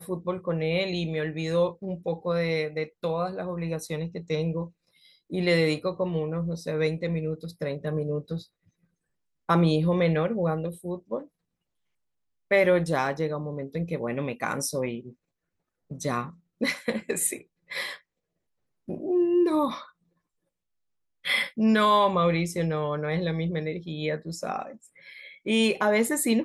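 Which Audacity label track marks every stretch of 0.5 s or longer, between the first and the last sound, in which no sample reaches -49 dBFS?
8.460000	9.490000	silence
11.260000	12.510000	silence
15.130000	15.900000	silence
17.990000	18.880000	silence
19.900000	21.240000	silence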